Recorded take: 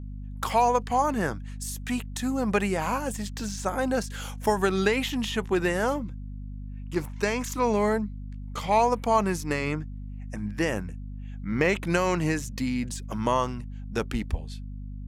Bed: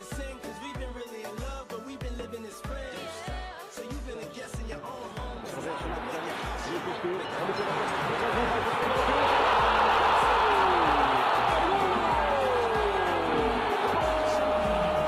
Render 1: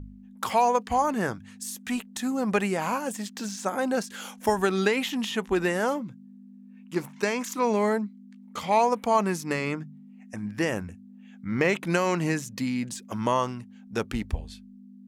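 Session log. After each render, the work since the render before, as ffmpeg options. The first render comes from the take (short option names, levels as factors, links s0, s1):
-af "bandreject=f=50:t=h:w=4,bandreject=f=100:t=h:w=4,bandreject=f=150:t=h:w=4"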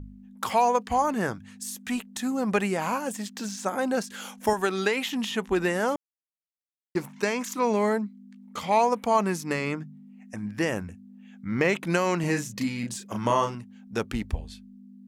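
-filter_complex "[0:a]asettb=1/sr,asplit=3[s0][s1][s2];[s0]atrim=end=4.534[s3];[s1]atrim=start=4.53:end=5.13,asetpts=PTS-STARTPTS,afade=t=in:d=0.004:c=qsin,afade=t=out:st=0.596:d=0.004:c=qsin,lowshelf=f=180:g=-11.5[s4];[s2]atrim=start=5.126[s5];[s3][s4]acrossfade=d=0.004:c1=hsin:c2=qsin[s6];[s6][s5]acrossfade=d=0.004:c1=qsin:c2=hsin,asettb=1/sr,asplit=3[s7][s8][s9];[s7]atrim=end=12.204[s10];[s8]atrim=start=12.2:end=13.55,asetpts=PTS-STARTPTS,afade=t=in:d=0.004:c=qsin,afade=t=out:st=1.346:d=0.004:c=qsin,asplit=2[s11][s12];[s12]adelay=34,volume=0.596[s13];[s11][s13]amix=inputs=2:normalize=0,atrim=end_sample=59535[s14];[s9]atrim=start=13.546[s15];[s10][s14]acrossfade=d=0.004:c1=hsin:c2=qsin[s16];[s16][s15]acrossfade=d=0.004:c1=qsin:c2=hsin,asplit=3[s17][s18][s19];[s17]atrim=end=5.96,asetpts=PTS-STARTPTS,afade=t=out:st=5.956:d=0.004:c=hsin[s20];[s18]atrim=start=5.96:end=6.95,asetpts=PTS-STARTPTS,volume=0[s21];[s19]atrim=start=6.95,asetpts=PTS-STARTPTS,afade=t=in:d=0.004:c=hsin[s22];[s20][s21][s22]concat=n=3:v=0:a=1"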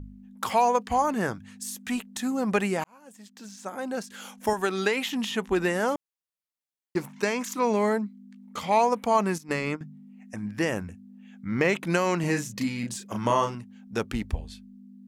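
-filter_complex "[0:a]asettb=1/sr,asplit=3[s0][s1][s2];[s0]atrim=end=9.384[s3];[s1]atrim=start=9.38:end=9.81,asetpts=PTS-STARTPTS,afade=t=in:d=0.004:c=qsin,afade=t=out:st=0.426:d=0.004:c=qsin,agate=range=0.251:threshold=0.0282:ratio=16:release=100:detection=peak[s4];[s2]atrim=start=9.806[s5];[s3][s4]acrossfade=d=0.004:c1=hsin:c2=qsin[s6];[s6][s5]acrossfade=d=0.004:c1=qsin:c2=hsin,asplit=2[s7][s8];[s7]atrim=end=2.84,asetpts=PTS-STARTPTS,afade=t=out:st=2.836:d=0.004:c=hsin[s9];[s8]atrim=start=2.84,asetpts=PTS-STARTPTS,afade=t=in:d=2.01[s10];[s9][s10]concat=n=2:v=0:a=1"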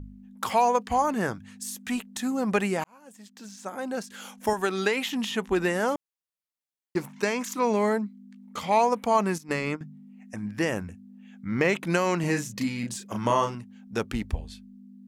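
-af anull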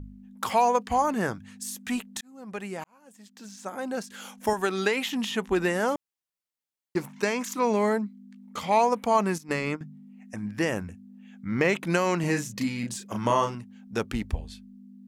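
-filter_complex "[0:a]asplit=2[s0][s1];[s0]atrim=end=2.21,asetpts=PTS-STARTPTS,afade=t=out:st=2.206:d=0.004:c=hsin[s2];[s1]atrim=start=2.21,asetpts=PTS-STARTPTS,afade=t=in:d=1.34[s3];[s2][s3]concat=n=2:v=0:a=1"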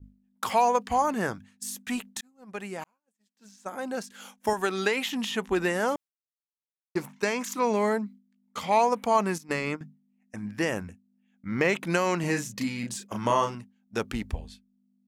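-af "lowshelf=f=320:g=-3,agate=range=0.0224:threshold=0.0126:ratio=3:detection=peak"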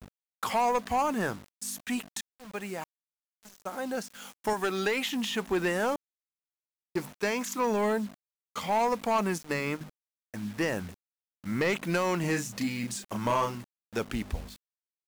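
-af "acrusher=bits=7:mix=0:aa=0.000001,asoftclip=type=tanh:threshold=0.1"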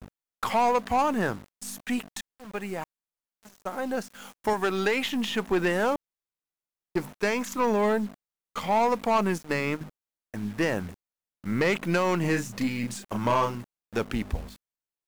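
-filter_complex "[0:a]aeval=exprs='if(lt(val(0),0),0.708*val(0),val(0))':c=same,asplit=2[s0][s1];[s1]adynamicsmooth=sensitivity=7:basefreq=2400,volume=0.708[s2];[s0][s2]amix=inputs=2:normalize=0"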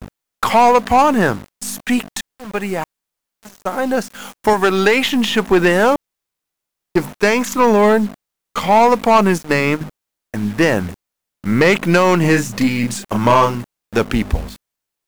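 -af "volume=3.98"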